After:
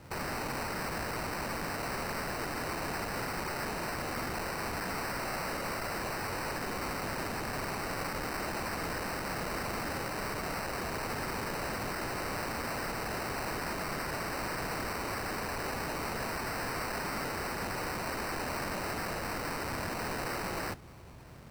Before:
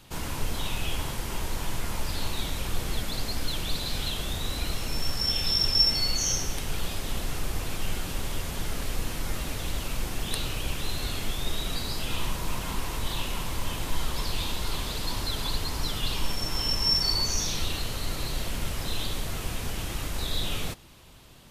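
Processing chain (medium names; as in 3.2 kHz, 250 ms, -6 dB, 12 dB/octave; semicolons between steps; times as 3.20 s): high-pass 70 Hz 12 dB/octave; bass shelf 160 Hz +8 dB; peak limiter -22.5 dBFS, peak gain reduction 11 dB; sample-and-hold 13×; integer overflow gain 31 dB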